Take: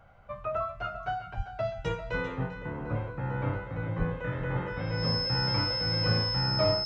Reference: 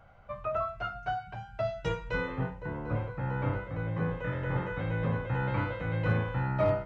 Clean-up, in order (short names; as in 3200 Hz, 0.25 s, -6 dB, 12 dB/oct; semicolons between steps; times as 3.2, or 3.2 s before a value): notch 5200 Hz, Q 30; 1.36–1.48 HPF 140 Hz 24 dB/oct; 3.98–4.1 HPF 140 Hz 24 dB/oct; inverse comb 0.395 s -12 dB